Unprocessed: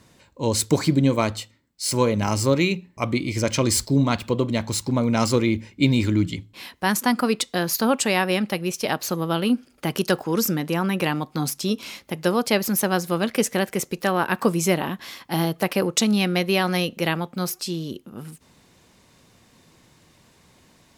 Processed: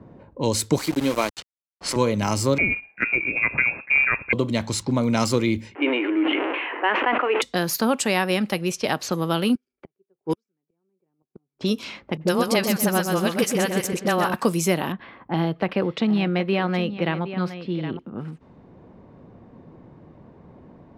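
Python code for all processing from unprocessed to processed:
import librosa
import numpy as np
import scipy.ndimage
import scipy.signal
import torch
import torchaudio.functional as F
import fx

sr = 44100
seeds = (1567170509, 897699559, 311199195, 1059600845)

y = fx.chain(x, sr, fx.highpass(hz=290.0, slope=12),
    fx.sample_gate(floor_db=-28.0), at=(0.78, 1.96))
y = fx.chain(y, sr, fx.highpass(hz=100.0, slope=12),
    fx.quant_float(bits=2),
    fx.freq_invert(carrier_hz=2600), at=(2.58, 4.33))
y = fx.chain(y, sr, fx.zero_step(step_db=-28.0),
    fx.cheby1_bandpass(low_hz=300.0, high_hz=2900.0, order=5),
    fx.sustainer(db_per_s=29.0), at=(5.75, 7.42))
y = fx.chain(y, sr, fx.small_body(hz=(390.0, 2300.0), ring_ms=80, db=15),
    fx.gate_flip(shuts_db=-14.0, range_db=-28),
    fx.upward_expand(threshold_db=-42.0, expansion=2.5), at=(9.55, 11.61))
y = fx.chain(y, sr, fx.dispersion(late='highs', ms=41.0, hz=530.0),
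    fx.echo_feedback(ms=126, feedback_pct=31, wet_db=-6.0), at=(12.17, 14.34))
y = fx.chain(y, sr, fx.air_absorb(metres=420.0),
    fx.echo_single(ms=766, db=-13.5), at=(14.92, 17.99))
y = fx.env_lowpass(y, sr, base_hz=650.0, full_db=-20.5)
y = fx.band_squash(y, sr, depth_pct=40)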